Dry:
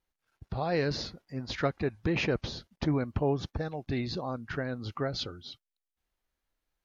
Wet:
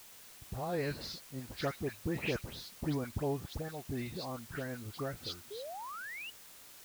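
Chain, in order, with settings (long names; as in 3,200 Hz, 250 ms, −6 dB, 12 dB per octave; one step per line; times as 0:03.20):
sound drawn into the spectrogram rise, 0:05.50–0:06.23, 390–3,000 Hz −37 dBFS
all-pass dispersion highs, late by 128 ms, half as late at 2,500 Hz
bit-depth reduction 8 bits, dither triangular
level −6.5 dB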